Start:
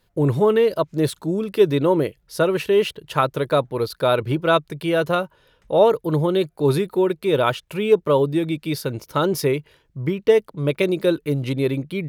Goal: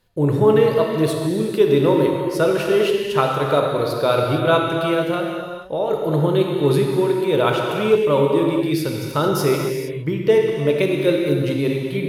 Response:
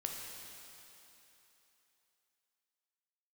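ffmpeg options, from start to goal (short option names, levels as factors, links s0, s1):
-filter_complex "[0:a]asettb=1/sr,asplit=3[s0][s1][s2];[s0]atrim=end=4.934[s3];[s1]atrim=start=4.93:end=5.91,asetpts=PTS-STARTPTS,afade=t=in:d=0.004:c=qsin,afade=t=out:st=0.976:d=0.004:c=qsin,acompressor=threshold=0.0794:ratio=3[s4];[s2]atrim=start=5.906[s5];[s3][s4]acrossfade=d=0.004:c1=hsin:c2=qsin[s6];[s6][s5]acrossfade=d=0.004:c1=qsin:c2=hsin[s7];[1:a]atrim=start_sample=2205,afade=t=out:st=0.38:d=0.01,atrim=end_sample=17199,asetrate=30870,aresample=44100[s8];[s7][s8]afir=irnorm=-1:irlink=0"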